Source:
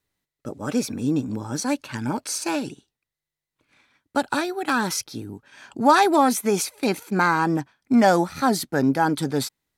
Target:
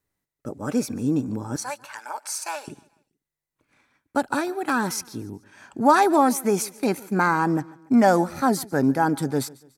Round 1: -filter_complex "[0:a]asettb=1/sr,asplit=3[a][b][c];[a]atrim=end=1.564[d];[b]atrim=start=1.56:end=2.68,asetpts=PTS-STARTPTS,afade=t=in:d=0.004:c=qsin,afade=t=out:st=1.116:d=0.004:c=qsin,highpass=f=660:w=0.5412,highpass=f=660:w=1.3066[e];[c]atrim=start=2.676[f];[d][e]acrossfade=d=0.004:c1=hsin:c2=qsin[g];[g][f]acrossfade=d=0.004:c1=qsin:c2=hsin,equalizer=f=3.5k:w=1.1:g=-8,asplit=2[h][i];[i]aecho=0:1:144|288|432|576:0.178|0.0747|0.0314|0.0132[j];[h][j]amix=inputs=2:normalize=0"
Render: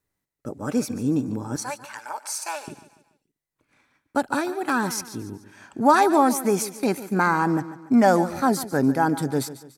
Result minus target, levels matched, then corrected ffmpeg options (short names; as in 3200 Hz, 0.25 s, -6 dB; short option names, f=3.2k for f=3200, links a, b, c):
echo-to-direct +7.5 dB
-filter_complex "[0:a]asettb=1/sr,asplit=3[a][b][c];[a]atrim=end=1.564[d];[b]atrim=start=1.56:end=2.68,asetpts=PTS-STARTPTS,afade=t=in:d=0.004:c=qsin,afade=t=out:st=1.116:d=0.004:c=qsin,highpass=f=660:w=0.5412,highpass=f=660:w=1.3066[e];[c]atrim=start=2.676[f];[d][e]acrossfade=d=0.004:c1=hsin:c2=qsin[g];[g][f]acrossfade=d=0.004:c1=qsin:c2=hsin,equalizer=f=3.5k:w=1.1:g=-8,asplit=2[h][i];[i]aecho=0:1:144|288|432:0.075|0.0315|0.0132[j];[h][j]amix=inputs=2:normalize=0"